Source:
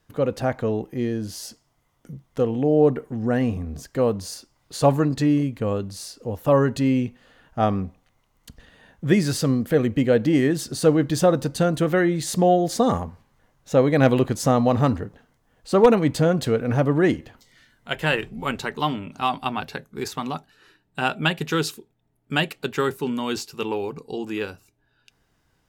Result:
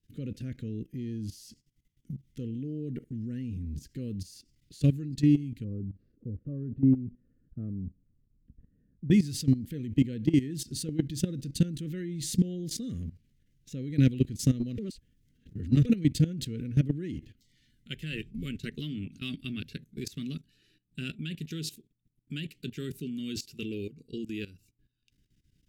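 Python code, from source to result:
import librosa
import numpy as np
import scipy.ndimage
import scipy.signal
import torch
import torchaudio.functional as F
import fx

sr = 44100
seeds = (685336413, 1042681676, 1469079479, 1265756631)

y = fx.lowpass(x, sr, hz=1100.0, slope=24, at=(5.64, 9.11))
y = fx.edit(y, sr, fx.reverse_span(start_s=14.78, length_s=1.07), tone=tone)
y = scipy.signal.sosfilt(scipy.signal.cheby1(2, 1.0, [280.0, 2700.0], 'bandstop', fs=sr, output='sos'), y)
y = fx.low_shelf(y, sr, hz=210.0, db=8.0)
y = fx.level_steps(y, sr, step_db=16)
y = F.gain(torch.from_numpy(y), -3.0).numpy()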